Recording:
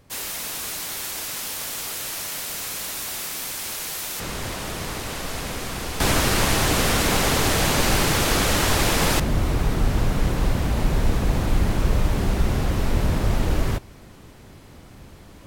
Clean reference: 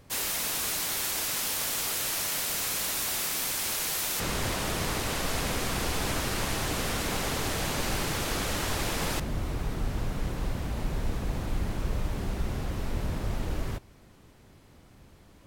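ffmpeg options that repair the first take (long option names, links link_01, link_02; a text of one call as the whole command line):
ffmpeg -i in.wav -af "asetnsamples=nb_out_samples=441:pad=0,asendcmd='6 volume volume -10dB',volume=0dB" out.wav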